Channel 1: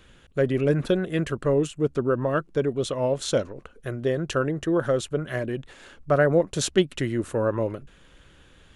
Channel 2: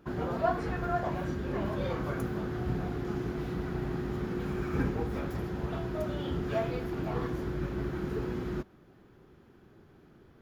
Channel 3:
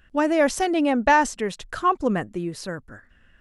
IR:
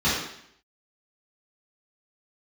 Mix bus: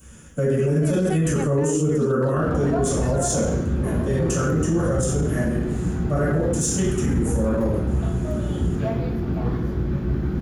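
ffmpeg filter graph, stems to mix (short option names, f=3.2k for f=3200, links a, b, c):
-filter_complex "[0:a]aexciter=amount=15.8:drive=9.5:freq=6.3k,dynaudnorm=f=190:g=11:m=11.5dB,highshelf=f=3.4k:g=-11.5,volume=-3.5dB,asplit=3[a][b][c];[b]volume=-6dB[d];[1:a]lowshelf=f=380:g=10.5,adelay=2300,volume=0.5dB,asplit=2[e][f];[f]volume=-21.5dB[g];[2:a]adelay=500,volume=-6.5dB[h];[c]apad=whole_len=172202[i];[h][i]sidechaincompress=threshold=-32dB:ratio=8:attack=16:release=159[j];[3:a]atrim=start_sample=2205[k];[d][g]amix=inputs=2:normalize=0[l];[l][k]afir=irnorm=-1:irlink=0[m];[a][e][j][m]amix=inputs=4:normalize=0,alimiter=limit=-13.5dB:level=0:latency=1:release=13"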